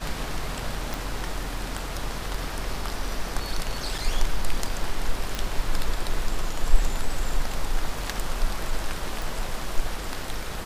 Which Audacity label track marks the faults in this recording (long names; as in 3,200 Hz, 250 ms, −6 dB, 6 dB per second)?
0.940000	0.940000	click
3.980000	3.990000	drop-out 5.2 ms
5.350000	5.350000	click
9.220000	9.220000	click